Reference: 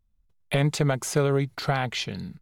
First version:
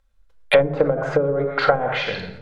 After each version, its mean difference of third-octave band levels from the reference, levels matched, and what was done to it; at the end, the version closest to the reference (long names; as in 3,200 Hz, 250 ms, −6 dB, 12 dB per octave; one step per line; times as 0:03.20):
10.0 dB: parametric band 1,500 Hz +8 dB 0.34 octaves
rectangular room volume 2,400 cubic metres, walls furnished, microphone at 2.2 metres
treble cut that deepens with the level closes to 340 Hz, closed at −17 dBFS
octave-band graphic EQ 125/250/500/1,000/2,000/4,000/8,000 Hz −8/−8/+11/+5/+7/+6/+4 dB
level +3 dB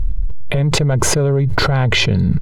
7.5 dB: spectral tilt −3.5 dB per octave
comb filter 2 ms, depth 36%
in parallel at −8 dB: soft clipping −16 dBFS, distortion −10 dB
on the sum: envelope flattener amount 100%
level −4.5 dB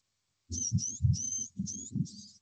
20.5 dB: frequency axis turned over on the octave scale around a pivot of 930 Hz
inverse Chebyshev band-stop filter 660–1,800 Hz, stop band 70 dB
dynamic equaliser 300 Hz, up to −5 dB, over −43 dBFS, Q 1.8
level −4 dB
G.722 64 kbit/s 16,000 Hz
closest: second